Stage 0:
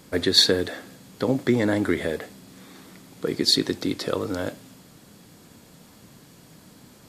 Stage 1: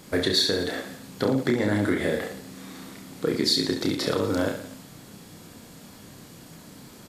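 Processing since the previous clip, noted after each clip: compressor 6:1, threshold -23 dBFS, peak gain reduction 11.5 dB; on a send: reverse bouncing-ball echo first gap 30 ms, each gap 1.25×, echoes 5; on the sum: gain +2 dB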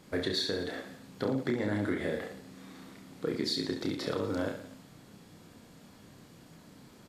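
high shelf 5900 Hz -8.5 dB; gain -7.5 dB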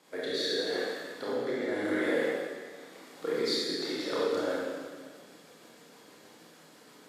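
HPF 400 Hz 12 dB/oct; rotary speaker horn 0.85 Hz, later 6.3 Hz, at 3.49; reverb RT60 1.7 s, pre-delay 24 ms, DRR -6 dB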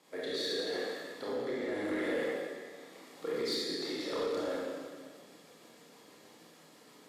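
notch 1500 Hz, Q 9.5; soft clip -24 dBFS, distortion -18 dB; gain -2.5 dB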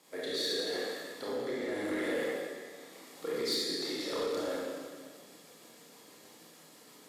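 high shelf 6000 Hz +9 dB

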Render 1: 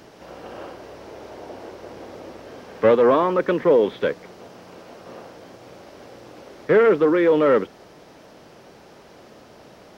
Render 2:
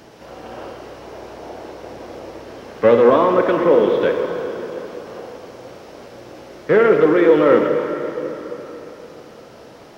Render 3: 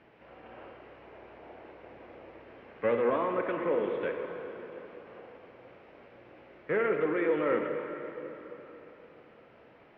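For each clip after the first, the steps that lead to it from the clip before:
plate-style reverb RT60 3.8 s, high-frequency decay 0.85×, DRR 2.5 dB; gain +2 dB
ladder low-pass 2800 Hz, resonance 45%; gain -7 dB

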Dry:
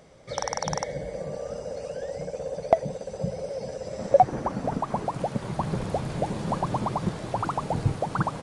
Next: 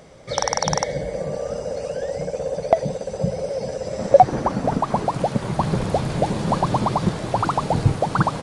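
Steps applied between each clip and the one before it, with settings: dynamic EQ 4200 Hz, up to +4 dB, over -48 dBFS, Q 1.6; maximiser +8 dB; gain -1 dB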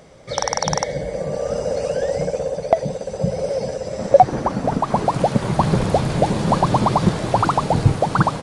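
AGC gain up to 5.5 dB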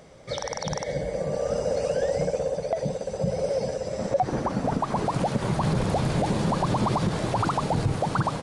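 limiter -11.5 dBFS, peak gain reduction 10 dB; gain -3.5 dB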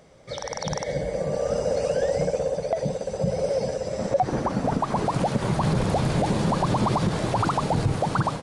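AGC gain up to 5 dB; gain -3.5 dB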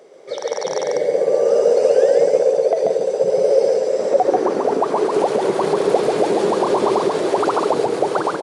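resonant high-pass 400 Hz, resonance Q 4.8; echo 0.138 s -3 dB; gain +1.5 dB

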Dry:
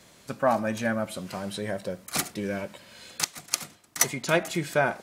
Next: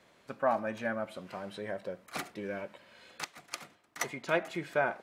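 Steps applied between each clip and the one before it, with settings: tone controls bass -8 dB, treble -14 dB; gain -5 dB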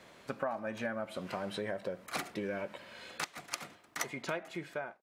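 ending faded out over 1.06 s; compressor 6:1, threshold -40 dBFS, peak gain reduction 16 dB; gain +6.5 dB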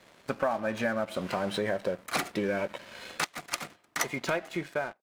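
sample leveller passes 2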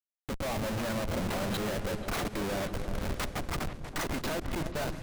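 Schmitt trigger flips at -35.5 dBFS; repeats that get brighter 0.162 s, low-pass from 200 Hz, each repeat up 2 oct, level -6 dB

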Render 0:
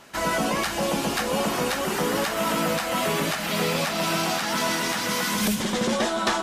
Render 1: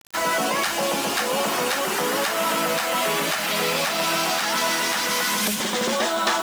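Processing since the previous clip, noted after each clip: HPF 500 Hz 6 dB/oct; in parallel at -1.5 dB: limiter -21.5 dBFS, peak gain reduction 8.5 dB; on the sum: requantised 6-bit, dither none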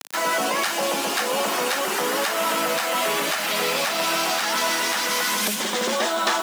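HPF 220 Hz 12 dB/oct; upward compressor, threshold -26 dBFS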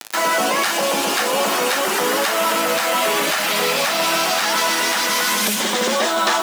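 in parallel at +1.5 dB: limiter -20 dBFS, peak gain reduction 10.5 dB; on the sum: bit-crush 7-bit; flange 0.37 Hz, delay 8.6 ms, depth 2.5 ms, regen -71%; gain +4.5 dB

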